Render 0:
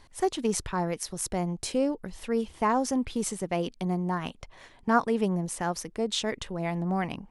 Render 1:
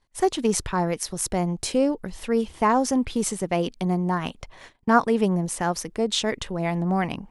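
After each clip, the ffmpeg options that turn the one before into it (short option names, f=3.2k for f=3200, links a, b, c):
-af "agate=range=-23dB:threshold=-51dB:ratio=16:detection=peak,volume=5dB"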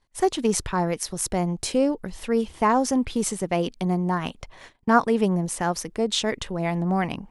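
-af anull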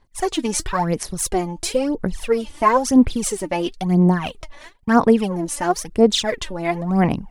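-af "aphaser=in_gain=1:out_gain=1:delay=3.5:decay=0.71:speed=0.99:type=sinusoidal,volume=1dB"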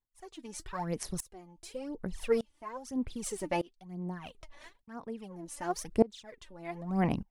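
-af "aeval=exprs='val(0)*pow(10,-26*if(lt(mod(-0.83*n/s,1),2*abs(-0.83)/1000),1-mod(-0.83*n/s,1)/(2*abs(-0.83)/1000),(mod(-0.83*n/s,1)-2*abs(-0.83)/1000)/(1-2*abs(-0.83)/1000))/20)':c=same,volume=-7dB"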